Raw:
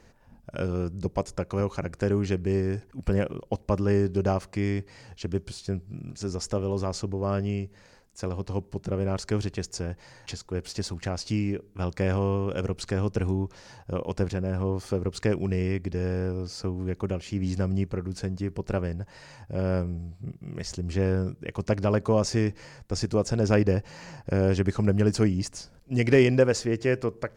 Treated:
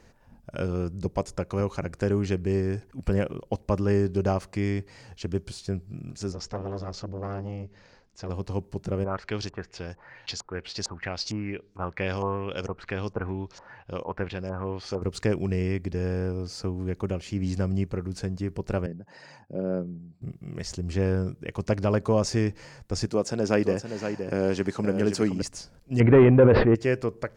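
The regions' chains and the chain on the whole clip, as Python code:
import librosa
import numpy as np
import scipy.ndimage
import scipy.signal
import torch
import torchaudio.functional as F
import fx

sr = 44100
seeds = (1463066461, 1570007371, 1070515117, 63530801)

y = fx.chain(x, sr, fx.lowpass(hz=5800.0, slope=24),
    fx.transformer_sat(knee_hz=730.0), at=(6.32, 8.29))
y = fx.chain(y, sr, fx.low_shelf(hz=440.0, db=-7.0),
    fx.filter_lfo_lowpass(shape='saw_up', hz=2.2, low_hz=890.0, high_hz=6900.0, q=2.7), at=(9.04, 15.02))
y = fx.chain(y, sr, fx.envelope_sharpen(power=1.5),
    fx.highpass(hz=160.0, slope=24), at=(18.86, 20.22))
y = fx.chain(y, sr, fx.highpass(hz=180.0, slope=12),
    fx.echo_single(ms=520, db=-8.0), at=(23.07, 25.42))
y = fx.chain(y, sr, fx.leveller(passes=2),
    fx.gaussian_blur(sigma=4.2),
    fx.sustainer(db_per_s=39.0), at=(26.0, 26.75))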